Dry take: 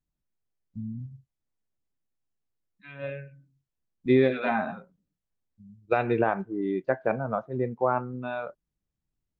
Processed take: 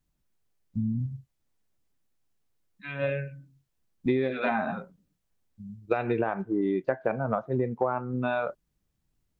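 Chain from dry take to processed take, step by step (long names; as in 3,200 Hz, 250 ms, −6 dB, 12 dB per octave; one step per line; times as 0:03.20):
downward compressor 8 to 1, threshold −31 dBFS, peak gain reduction 15 dB
level +8 dB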